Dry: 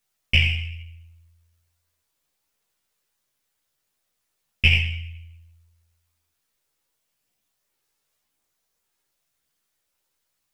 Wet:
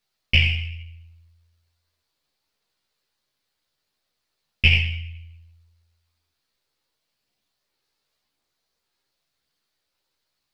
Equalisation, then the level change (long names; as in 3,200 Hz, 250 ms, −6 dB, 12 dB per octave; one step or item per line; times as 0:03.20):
bass and treble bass −3 dB, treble −8 dB
low-shelf EQ 380 Hz +4 dB
parametric band 4,400 Hz +11 dB 0.62 octaves
0.0 dB